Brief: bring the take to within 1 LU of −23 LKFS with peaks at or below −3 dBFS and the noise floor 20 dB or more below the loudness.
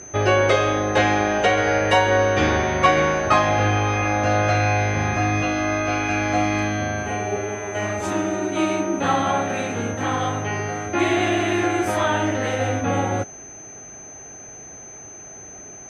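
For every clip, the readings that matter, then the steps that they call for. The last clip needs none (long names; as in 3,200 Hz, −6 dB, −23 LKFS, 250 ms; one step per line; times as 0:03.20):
interfering tone 6,200 Hz; level of the tone −38 dBFS; integrated loudness −21.0 LKFS; sample peak −4.0 dBFS; target loudness −23.0 LKFS
→ notch filter 6,200 Hz, Q 30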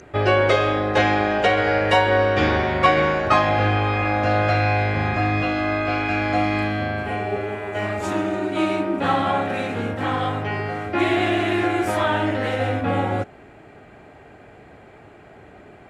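interfering tone none found; integrated loudness −21.0 LKFS; sample peak −4.0 dBFS; target loudness −23.0 LKFS
→ level −2 dB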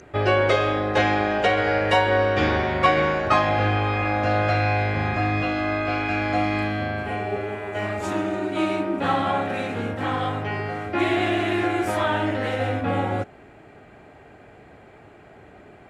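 integrated loudness −23.0 LKFS; sample peak −6.0 dBFS; background noise floor −48 dBFS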